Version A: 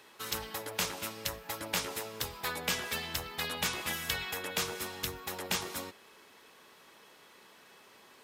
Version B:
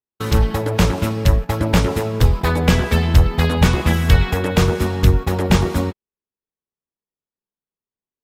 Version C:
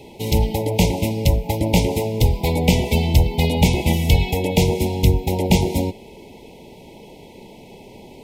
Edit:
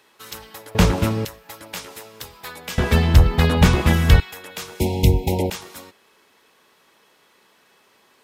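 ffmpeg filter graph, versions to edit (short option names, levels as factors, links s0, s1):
-filter_complex "[1:a]asplit=2[s0][s1];[0:a]asplit=4[s2][s3][s4][s5];[s2]atrim=end=0.752[s6];[s0]atrim=start=0.748:end=1.252[s7];[s3]atrim=start=1.248:end=2.782[s8];[s1]atrim=start=2.778:end=4.202[s9];[s4]atrim=start=4.198:end=4.802[s10];[2:a]atrim=start=4.798:end=5.502[s11];[s5]atrim=start=5.498[s12];[s6][s7]acrossfade=d=0.004:c1=hsin:c2=hsin[s13];[s13][s8]acrossfade=d=0.004:c1=hsin:c2=hsin[s14];[s14][s9]acrossfade=d=0.004:c1=hsin:c2=hsin[s15];[s15][s10]acrossfade=d=0.004:c1=hsin:c2=hsin[s16];[s16][s11]acrossfade=d=0.004:c1=hsin:c2=hsin[s17];[s17][s12]acrossfade=d=0.004:c1=hsin:c2=hsin"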